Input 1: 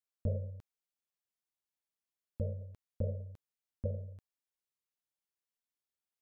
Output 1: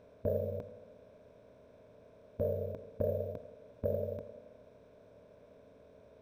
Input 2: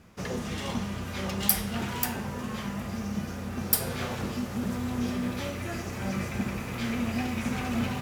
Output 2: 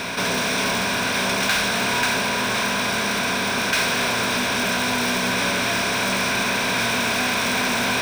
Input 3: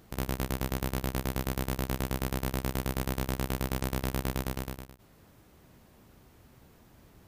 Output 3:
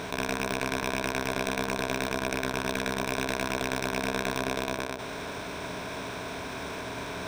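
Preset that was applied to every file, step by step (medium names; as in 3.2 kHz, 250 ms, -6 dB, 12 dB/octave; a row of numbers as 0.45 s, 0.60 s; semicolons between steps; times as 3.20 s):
spectral levelling over time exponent 0.4; careless resampling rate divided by 3×, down none, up hold; treble shelf 7.5 kHz -7 dB; in parallel at -6 dB: integer overflow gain 19 dB; on the sum: rippled EQ curve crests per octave 1.6, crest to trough 8 dB; tape echo 85 ms, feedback 78%, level -13 dB, low-pass 1.3 kHz; overdrive pedal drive 22 dB, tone 6.3 kHz, clips at -2.5 dBFS; tape noise reduction on one side only decoder only; trim -8.5 dB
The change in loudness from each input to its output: +3.0 LU, +10.5 LU, +2.0 LU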